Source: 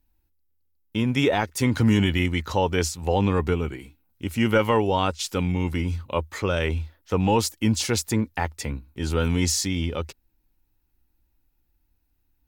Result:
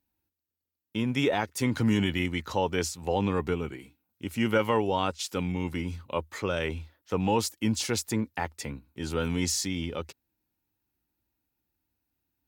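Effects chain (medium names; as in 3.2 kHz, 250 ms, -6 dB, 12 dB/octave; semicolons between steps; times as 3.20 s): high-pass 110 Hz 12 dB/octave; trim -4.5 dB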